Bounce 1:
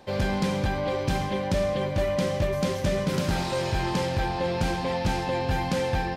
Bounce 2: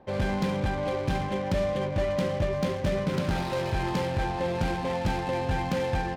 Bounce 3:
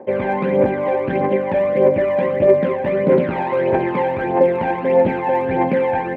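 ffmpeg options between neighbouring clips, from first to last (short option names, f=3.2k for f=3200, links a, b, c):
-af "adynamicsmooth=sensitivity=7.5:basefreq=1.2k,volume=-1.5dB"
-af "highpass=240,equalizer=f=250:t=q:w=4:g=6,equalizer=f=390:t=q:w=4:g=8,equalizer=f=550:t=q:w=4:g=9,equalizer=f=910:t=q:w=4:g=3,equalizer=f=1.3k:t=q:w=4:g=-5,equalizer=f=2.1k:t=q:w=4:g=5,lowpass=f=2.3k:w=0.5412,lowpass=f=2.3k:w=1.3066,aphaser=in_gain=1:out_gain=1:delay=1.3:decay=0.57:speed=1.6:type=triangular,volume=6dB"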